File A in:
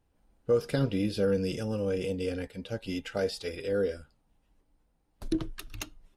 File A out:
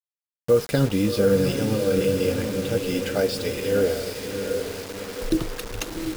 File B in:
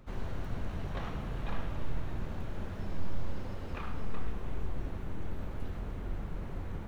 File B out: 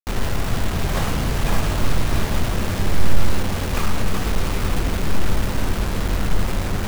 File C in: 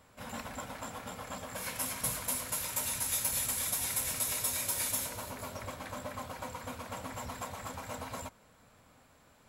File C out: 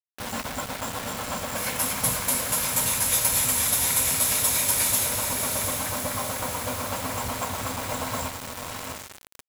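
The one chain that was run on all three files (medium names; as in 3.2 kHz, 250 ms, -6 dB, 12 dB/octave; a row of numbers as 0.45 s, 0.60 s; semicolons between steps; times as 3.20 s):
echo that smears into a reverb 725 ms, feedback 49%, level -5 dB; bit crusher 7-bit; normalise loudness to -24 LUFS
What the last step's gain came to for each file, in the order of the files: +7.0 dB, +14.5 dB, +9.0 dB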